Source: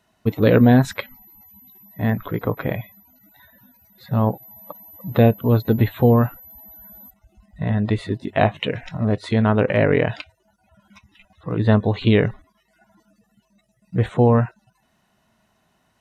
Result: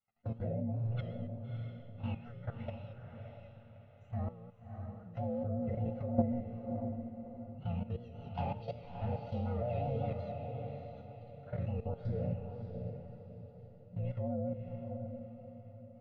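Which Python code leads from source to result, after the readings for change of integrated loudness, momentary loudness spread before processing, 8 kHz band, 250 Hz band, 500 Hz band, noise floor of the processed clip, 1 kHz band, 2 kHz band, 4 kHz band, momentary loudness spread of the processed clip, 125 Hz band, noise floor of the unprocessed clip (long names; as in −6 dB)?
−20.0 dB, 13 LU, can't be measured, −19.0 dB, −19.0 dB, −56 dBFS, −17.5 dB, −29.5 dB, below −25 dB, 15 LU, −16.5 dB, −66 dBFS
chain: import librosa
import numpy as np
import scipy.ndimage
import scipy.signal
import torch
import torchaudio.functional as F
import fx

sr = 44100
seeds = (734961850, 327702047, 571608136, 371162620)

p1 = fx.partial_stretch(x, sr, pct=119)
p2 = fx.env_lowpass_down(p1, sr, base_hz=570.0, full_db=-12.0)
p3 = p2 + 0.94 * np.pad(p2, (int(1.5 * sr / 1000.0), 0))[:len(p2)]
p4 = fx.dynamic_eq(p3, sr, hz=1300.0, q=1.5, threshold_db=-36.0, ratio=4.0, max_db=-4)
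p5 = fx.env_flanger(p4, sr, rest_ms=9.1, full_db=-14.0)
p6 = fx.resonator_bank(p5, sr, root=46, chord='minor', decay_s=0.74)
p7 = fx.vibrato(p6, sr, rate_hz=5.4, depth_cents=65.0)
p8 = fx.level_steps(p7, sr, step_db=15)
p9 = fx.air_absorb(p8, sr, metres=330.0)
p10 = p9 + fx.echo_diffused(p9, sr, ms=619, feedback_pct=40, wet_db=-5.5, dry=0)
y = p10 * 10.0 ** (10.0 / 20.0)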